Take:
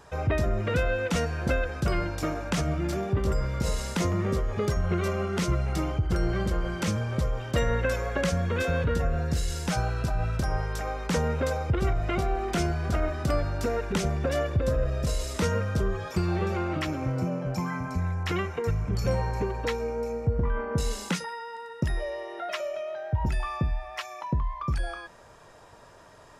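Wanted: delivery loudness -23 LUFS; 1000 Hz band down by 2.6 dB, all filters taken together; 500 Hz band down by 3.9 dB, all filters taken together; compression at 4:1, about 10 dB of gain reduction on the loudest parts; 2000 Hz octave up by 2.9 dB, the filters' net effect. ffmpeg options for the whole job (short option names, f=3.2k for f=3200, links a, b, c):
-af "equalizer=f=500:t=o:g=-4,equalizer=f=1k:t=o:g=-4,equalizer=f=2k:t=o:g=5.5,acompressor=threshold=-34dB:ratio=4,volume=14.5dB"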